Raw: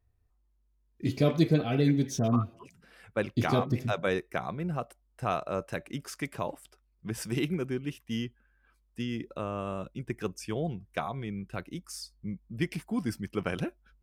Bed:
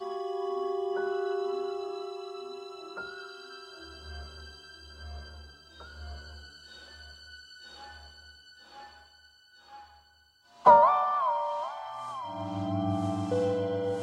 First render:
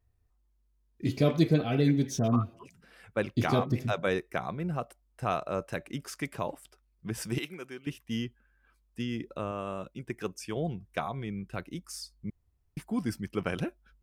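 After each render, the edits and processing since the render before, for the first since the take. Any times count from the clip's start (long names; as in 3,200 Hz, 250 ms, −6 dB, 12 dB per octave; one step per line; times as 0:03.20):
0:07.38–0:07.87: high-pass filter 1,100 Hz 6 dB per octave
0:09.51–0:10.57: low-shelf EQ 180 Hz −6.5 dB
0:12.30–0:12.77: fill with room tone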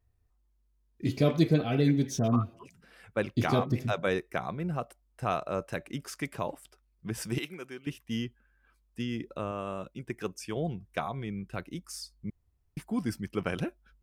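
no processing that can be heard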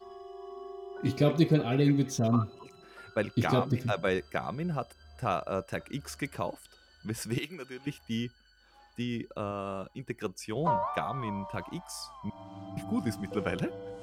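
mix in bed −11.5 dB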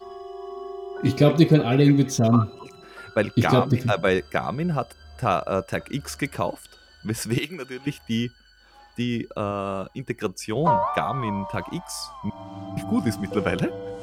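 level +8 dB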